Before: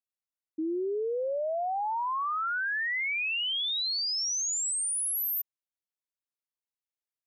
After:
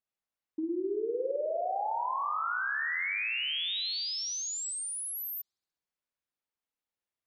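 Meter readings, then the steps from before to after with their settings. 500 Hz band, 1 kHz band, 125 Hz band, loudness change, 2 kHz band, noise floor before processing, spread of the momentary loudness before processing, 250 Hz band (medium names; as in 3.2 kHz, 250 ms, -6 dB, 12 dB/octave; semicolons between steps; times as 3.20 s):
-1.5 dB, -1.5 dB, no reading, -3.0 dB, -2.0 dB, under -85 dBFS, 5 LU, -1.0 dB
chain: treble shelf 4.9 kHz -10.5 dB; compression, threshold -36 dBFS, peak gain reduction 6.5 dB; spring tank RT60 1.7 s, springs 50 ms, chirp 25 ms, DRR 2.5 dB; trim +3 dB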